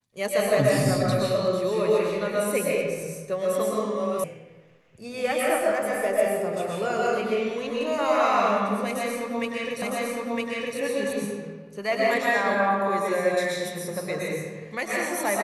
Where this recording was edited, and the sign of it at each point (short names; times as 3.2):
4.24 sound cut off
9.82 repeat of the last 0.96 s